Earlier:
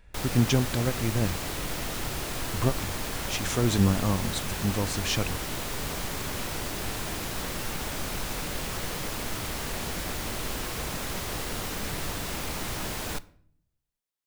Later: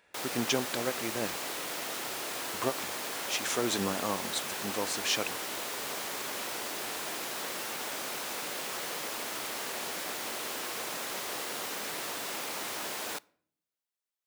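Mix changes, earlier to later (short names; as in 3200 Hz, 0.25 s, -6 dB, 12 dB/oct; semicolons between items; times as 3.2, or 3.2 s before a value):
background: send -8.0 dB; master: add HPF 380 Hz 12 dB/oct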